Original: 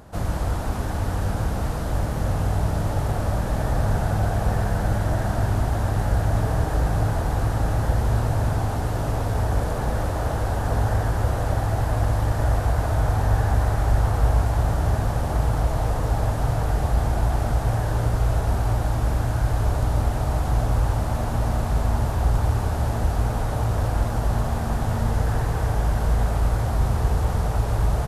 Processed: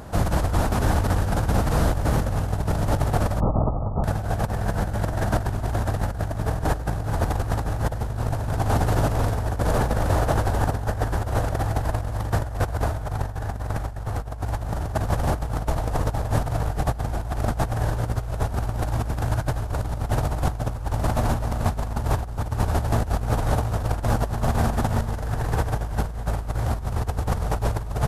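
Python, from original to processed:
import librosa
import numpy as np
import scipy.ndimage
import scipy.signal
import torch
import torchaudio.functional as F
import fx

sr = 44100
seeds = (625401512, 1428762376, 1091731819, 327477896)

y = fx.cheby1_lowpass(x, sr, hz=1300.0, order=8, at=(3.4, 4.04))
y = fx.over_compress(y, sr, threshold_db=-25.0, ratio=-0.5)
y = y * librosa.db_to_amplitude(2.5)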